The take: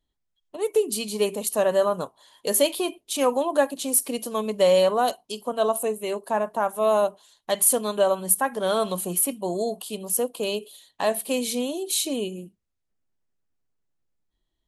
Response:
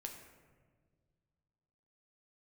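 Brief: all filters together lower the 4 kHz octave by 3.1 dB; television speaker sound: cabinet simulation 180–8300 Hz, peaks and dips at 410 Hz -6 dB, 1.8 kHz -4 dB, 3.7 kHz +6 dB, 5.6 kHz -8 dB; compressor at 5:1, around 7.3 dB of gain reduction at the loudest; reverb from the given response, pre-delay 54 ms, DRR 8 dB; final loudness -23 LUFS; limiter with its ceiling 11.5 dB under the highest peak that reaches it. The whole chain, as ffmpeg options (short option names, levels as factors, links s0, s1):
-filter_complex "[0:a]equalizer=f=4000:t=o:g=-6.5,acompressor=threshold=0.0708:ratio=5,alimiter=limit=0.0841:level=0:latency=1,asplit=2[s0][s1];[1:a]atrim=start_sample=2205,adelay=54[s2];[s1][s2]afir=irnorm=-1:irlink=0,volume=0.562[s3];[s0][s3]amix=inputs=2:normalize=0,highpass=f=180:w=0.5412,highpass=f=180:w=1.3066,equalizer=f=410:t=q:w=4:g=-6,equalizer=f=1800:t=q:w=4:g=-4,equalizer=f=3700:t=q:w=4:g=6,equalizer=f=5600:t=q:w=4:g=-8,lowpass=f=8300:w=0.5412,lowpass=f=8300:w=1.3066,volume=3.16"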